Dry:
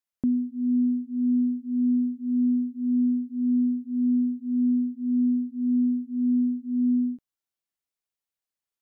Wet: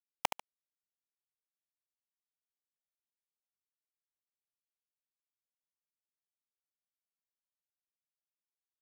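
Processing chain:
three sine waves on the formant tracks
inverse Chebyshev high-pass filter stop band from 320 Hz, stop band 40 dB
in parallel at +1 dB: compressor whose output falls as the input rises −58 dBFS, ratio −0.5
on the sum: bit reduction 5 bits
on a send: repeating echo 72 ms, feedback 26%, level −19.5 dB
on the sum: brickwall limiter −34 dBFS, peak gain reduction 10.5 dB
level +18 dB

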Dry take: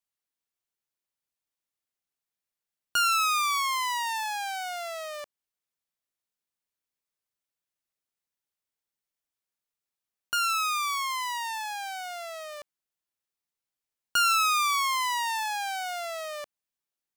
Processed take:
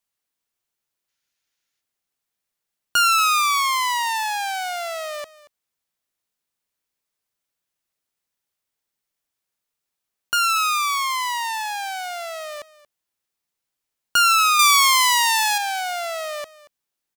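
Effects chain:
0:01.09–0:01.80: gain on a spectral selection 1,300–7,200 Hz +7 dB
0:14.59–0:15.58: high-shelf EQ 2,100 Hz +9 dB
single-tap delay 230 ms −18.5 dB
level +7 dB

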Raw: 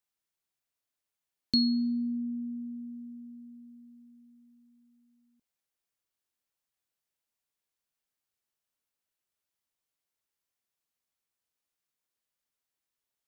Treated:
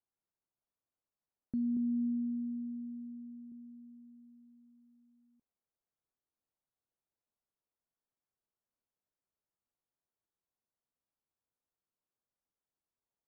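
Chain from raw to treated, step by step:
Bessel low-pass filter 950 Hz, order 6
0:01.76–0:03.52: comb filter 7 ms, depth 64%
brickwall limiter −29 dBFS, peak gain reduction 7 dB

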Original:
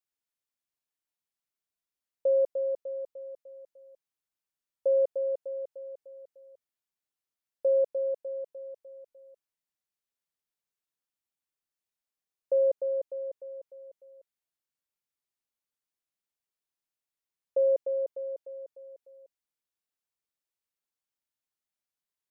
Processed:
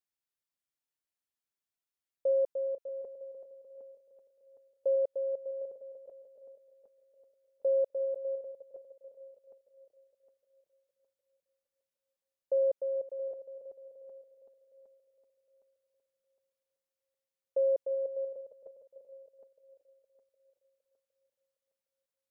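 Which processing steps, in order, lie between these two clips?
feedback delay that plays each chunk backwards 381 ms, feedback 56%, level −14 dB
level −3.5 dB

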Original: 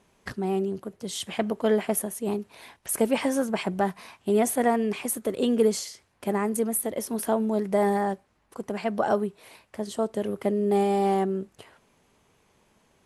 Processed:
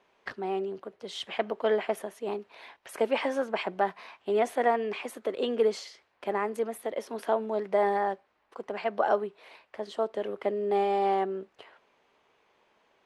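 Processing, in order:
three-way crossover with the lows and the highs turned down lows −18 dB, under 350 Hz, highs −22 dB, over 4,500 Hz

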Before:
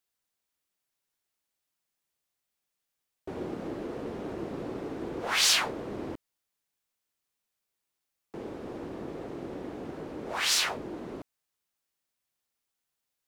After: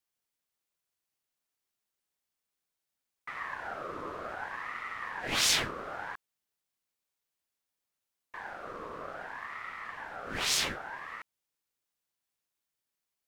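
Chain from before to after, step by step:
ring modulator whose carrier an LFO sweeps 1,200 Hz, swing 35%, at 0.62 Hz

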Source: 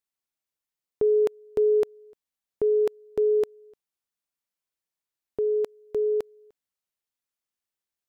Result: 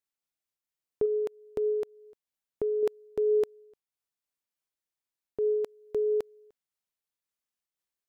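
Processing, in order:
0:01.05–0:02.83: downward compressor 4 to 1, threshold −25 dBFS, peak gain reduction 5.5 dB
amplitude modulation by smooth noise, depth 55%

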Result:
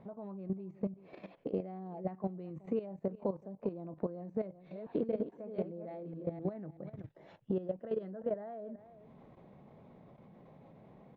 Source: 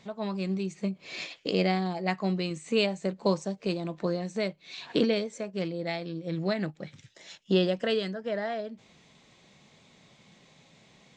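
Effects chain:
0:04.36–0:06.50: delay that plays each chunk backwards 254 ms, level −3.5 dB
single-tap delay 378 ms −22.5 dB
downward compressor 4 to 1, threshold −39 dBFS, peak gain reduction 17 dB
Chebyshev low-pass filter 740 Hz, order 2
output level in coarse steps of 13 dB
level +8 dB

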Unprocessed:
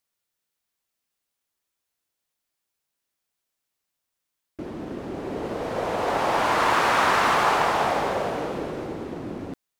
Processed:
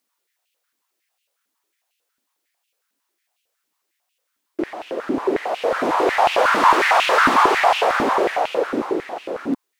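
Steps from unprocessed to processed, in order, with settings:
in parallel at −1 dB: brickwall limiter −17 dBFS, peak gain reduction 8 dB
on the sum: soft clipping −14 dBFS, distortion −15 dB
high-pass on a step sequencer 11 Hz 260–2,700 Hz

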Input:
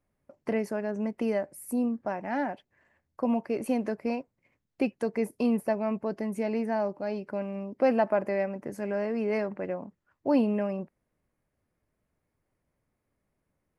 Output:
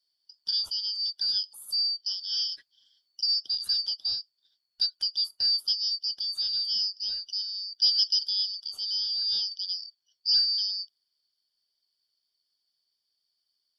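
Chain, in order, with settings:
band-splitting scrambler in four parts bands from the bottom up 4321
0:02.51–0:03.21: comb filter 7.2 ms, depth 95%

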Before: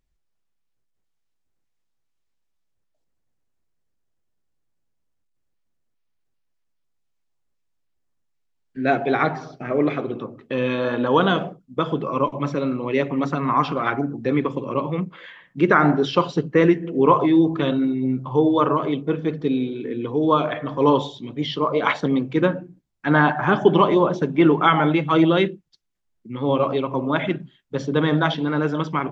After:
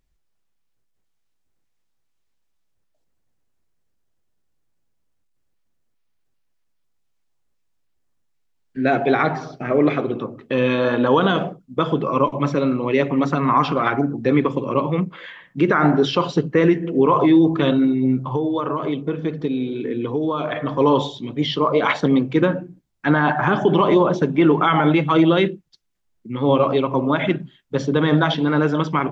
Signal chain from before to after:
brickwall limiter −10.5 dBFS, peak gain reduction 7.5 dB
0:18.32–0:20.56: downward compressor, threshold −23 dBFS, peak gain reduction 8 dB
level +4 dB

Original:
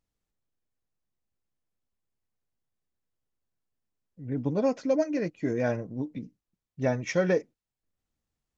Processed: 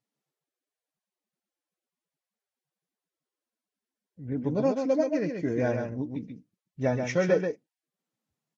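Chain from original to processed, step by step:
high-shelf EQ 6,000 Hz −5 dB
single-tap delay 134 ms −5.5 dB
Ogg Vorbis 48 kbit/s 48,000 Hz

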